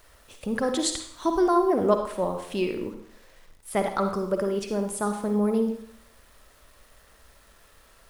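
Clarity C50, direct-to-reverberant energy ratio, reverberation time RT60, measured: 6.0 dB, 5.5 dB, 0.60 s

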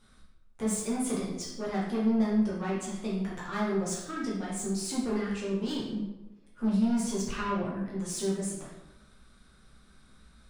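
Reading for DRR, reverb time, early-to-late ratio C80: −6.5 dB, 1.1 s, 5.0 dB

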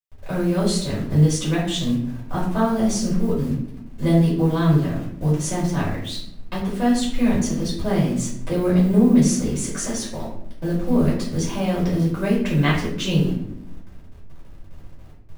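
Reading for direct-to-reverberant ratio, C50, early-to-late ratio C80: −8.0 dB, 3.5 dB, 7.5 dB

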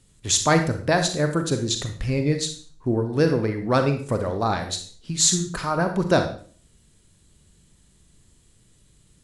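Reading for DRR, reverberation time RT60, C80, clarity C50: 6.0 dB, 0.45 s, 12.5 dB, 8.0 dB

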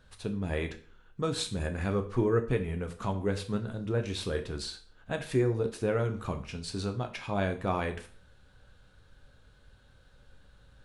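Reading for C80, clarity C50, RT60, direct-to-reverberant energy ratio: 17.5 dB, 13.0 dB, 0.45 s, 5.5 dB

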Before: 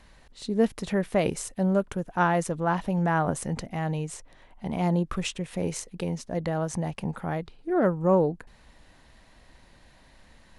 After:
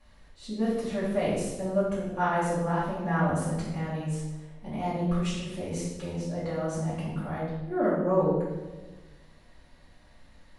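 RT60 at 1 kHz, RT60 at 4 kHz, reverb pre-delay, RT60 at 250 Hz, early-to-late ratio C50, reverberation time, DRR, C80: 1.0 s, 0.95 s, 4 ms, 1.5 s, 0.0 dB, 1.2 s, −12.5 dB, 3.5 dB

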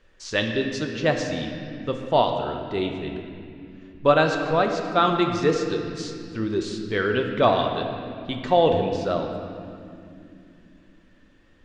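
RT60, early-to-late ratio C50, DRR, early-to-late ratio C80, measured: 2.8 s, 4.5 dB, 3.0 dB, 6.0 dB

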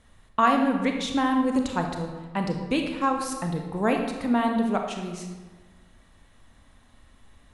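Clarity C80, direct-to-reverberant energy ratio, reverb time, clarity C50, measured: 7.0 dB, 3.0 dB, 1.4 s, 4.5 dB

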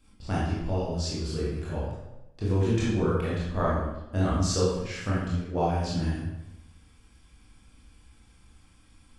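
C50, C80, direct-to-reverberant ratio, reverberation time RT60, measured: −1.5 dB, 2.0 dB, −8.0 dB, 0.95 s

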